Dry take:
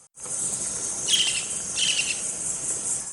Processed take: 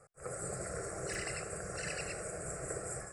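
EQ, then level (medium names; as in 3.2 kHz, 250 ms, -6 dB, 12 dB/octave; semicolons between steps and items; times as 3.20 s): boxcar filter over 14 samples; static phaser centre 930 Hz, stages 6; +4.5 dB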